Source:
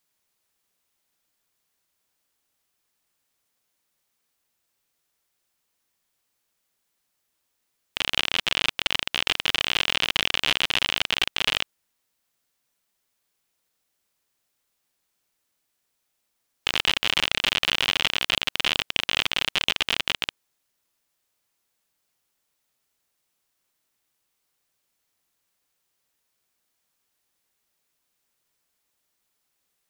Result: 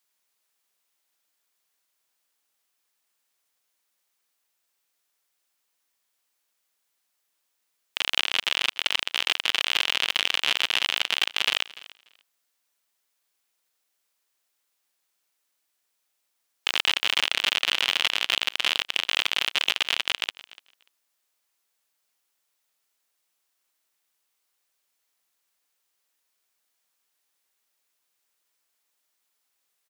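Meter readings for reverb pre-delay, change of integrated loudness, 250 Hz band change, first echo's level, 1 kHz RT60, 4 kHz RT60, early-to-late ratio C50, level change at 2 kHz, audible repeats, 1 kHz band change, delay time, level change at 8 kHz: no reverb audible, 0.0 dB, −7.5 dB, −20.0 dB, no reverb audible, no reverb audible, no reverb audible, 0.0 dB, 1, −1.0 dB, 293 ms, 0.0 dB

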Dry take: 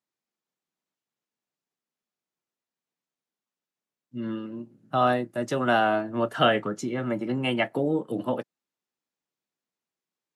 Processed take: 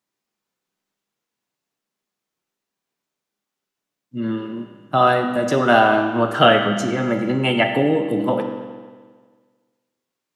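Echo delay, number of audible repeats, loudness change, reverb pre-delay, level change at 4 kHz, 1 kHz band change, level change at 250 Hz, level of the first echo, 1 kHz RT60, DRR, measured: no echo audible, no echo audible, +8.0 dB, 10 ms, +8.5 dB, +8.0 dB, +7.5 dB, no echo audible, 1.6 s, 4.0 dB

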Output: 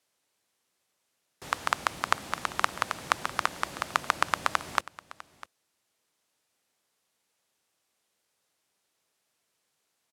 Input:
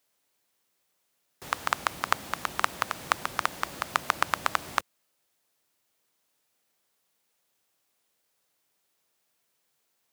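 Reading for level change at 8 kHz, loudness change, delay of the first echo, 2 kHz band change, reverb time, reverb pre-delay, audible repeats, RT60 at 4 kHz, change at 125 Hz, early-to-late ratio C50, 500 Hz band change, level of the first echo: −0.5 dB, 0.0 dB, 651 ms, 0.0 dB, no reverb audible, no reverb audible, 1, no reverb audible, 0.0 dB, no reverb audible, 0.0 dB, −19.0 dB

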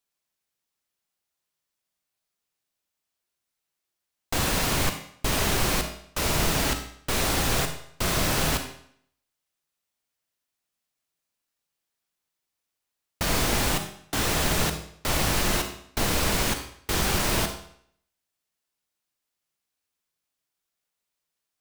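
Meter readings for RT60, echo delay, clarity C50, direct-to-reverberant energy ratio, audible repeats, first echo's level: 0.65 s, no echo audible, 8.0 dB, 6.0 dB, no echo audible, no echo audible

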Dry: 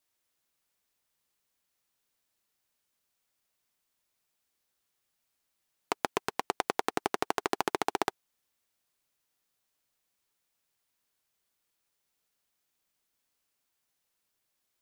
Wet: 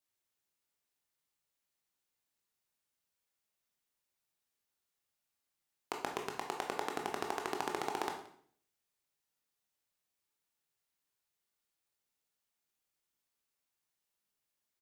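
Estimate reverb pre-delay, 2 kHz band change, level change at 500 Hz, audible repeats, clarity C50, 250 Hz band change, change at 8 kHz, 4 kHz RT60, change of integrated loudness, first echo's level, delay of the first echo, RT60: 16 ms, −6.5 dB, −6.0 dB, 1, 7.0 dB, −6.5 dB, −6.0 dB, 0.55 s, −6.5 dB, −21.5 dB, 175 ms, 0.60 s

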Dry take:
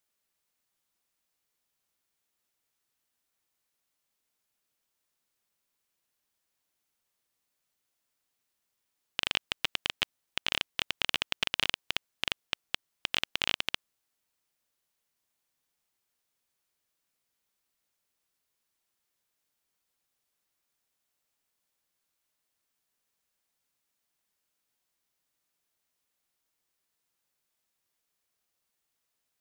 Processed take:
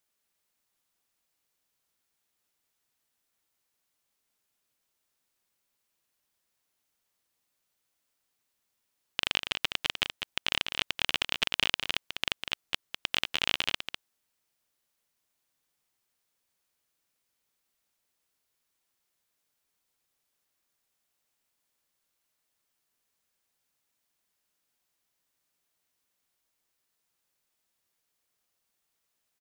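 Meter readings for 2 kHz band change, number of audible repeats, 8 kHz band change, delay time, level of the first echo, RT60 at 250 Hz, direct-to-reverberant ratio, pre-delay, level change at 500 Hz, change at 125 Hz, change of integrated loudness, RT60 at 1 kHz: +2.0 dB, 1, +1.5 dB, 200 ms, −7.5 dB, no reverb audible, no reverb audible, no reverb audible, +1.5 dB, +2.0 dB, +2.0 dB, no reverb audible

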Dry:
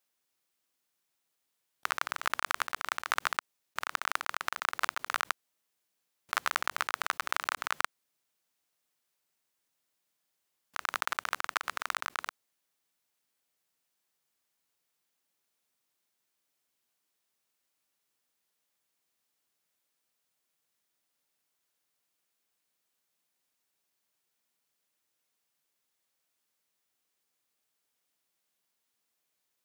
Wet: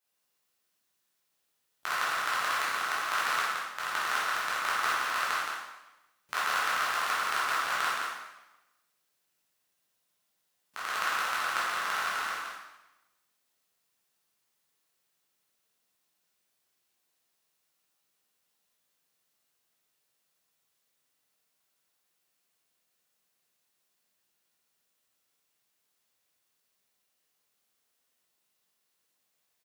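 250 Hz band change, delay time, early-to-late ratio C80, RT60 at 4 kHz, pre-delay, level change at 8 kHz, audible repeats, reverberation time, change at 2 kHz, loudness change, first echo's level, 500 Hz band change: +3.5 dB, 170 ms, 0.0 dB, 0.95 s, 7 ms, +3.5 dB, 1, 1.0 s, +4.0 dB, +4.0 dB, −4.5 dB, +4.5 dB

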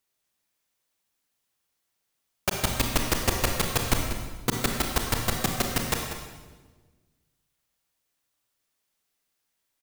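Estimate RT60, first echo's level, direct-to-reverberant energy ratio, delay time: 1.4 s, −11.5 dB, 2.0 dB, 191 ms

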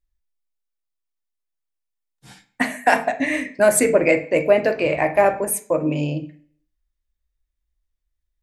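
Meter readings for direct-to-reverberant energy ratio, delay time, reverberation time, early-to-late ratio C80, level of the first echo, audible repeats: 6.5 dB, no echo audible, 0.45 s, 18.0 dB, no echo audible, no echo audible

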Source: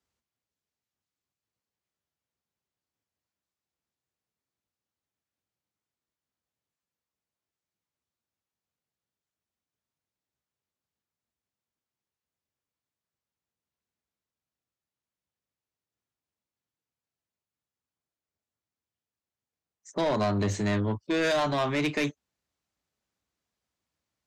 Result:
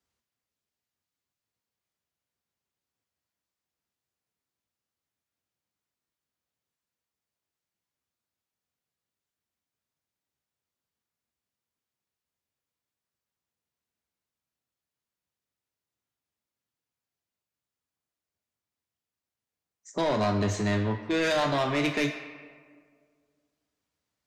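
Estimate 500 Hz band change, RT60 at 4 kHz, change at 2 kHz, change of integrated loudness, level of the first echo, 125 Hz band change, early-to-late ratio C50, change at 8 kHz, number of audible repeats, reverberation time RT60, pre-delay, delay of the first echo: +0.5 dB, 0.95 s, +1.5 dB, +0.5 dB, no echo audible, 0.0 dB, 7.5 dB, +1.0 dB, no echo audible, 1.8 s, 3 ms, no echo audible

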